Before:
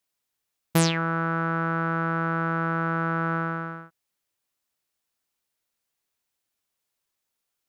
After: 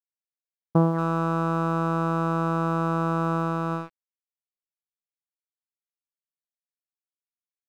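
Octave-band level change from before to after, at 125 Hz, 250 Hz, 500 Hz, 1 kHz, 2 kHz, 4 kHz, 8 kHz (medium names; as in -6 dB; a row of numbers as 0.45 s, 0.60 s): +2.0 dB, +2.5 dB, +3.5 dB, +1.0 dB, -9.0 dB, -12.5 dB, no reading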